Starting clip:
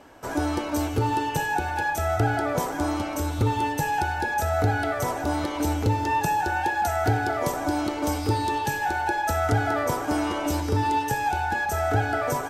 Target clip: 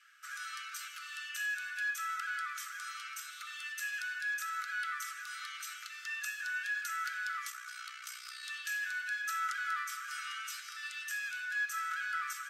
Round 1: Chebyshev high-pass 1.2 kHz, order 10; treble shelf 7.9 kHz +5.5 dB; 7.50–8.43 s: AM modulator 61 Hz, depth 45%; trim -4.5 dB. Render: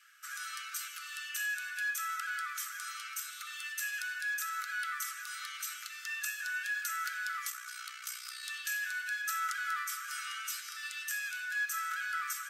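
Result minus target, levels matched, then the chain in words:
8 kHz band +4.0 dB
Chebyshev high-pass 1.2 kHz, order 10; treble shelf 7.9 kHz -6 dB; 7.50–8.43 s: AM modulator 61 Hz, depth 45%; trim -4.5 dB

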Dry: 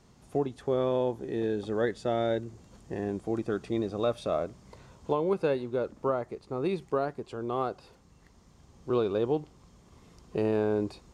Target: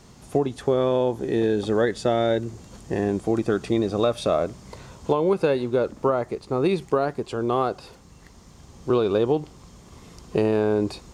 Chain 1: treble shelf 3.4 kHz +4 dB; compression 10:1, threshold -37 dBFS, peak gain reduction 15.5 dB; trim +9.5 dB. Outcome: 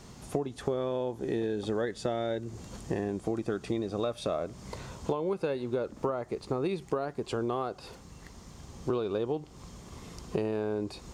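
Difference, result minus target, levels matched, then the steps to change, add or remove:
compression: peak gain reduction +10.5 dB
change: compression 10:1, threshold -25.5 dBFS, peak gain reduction 5 dB

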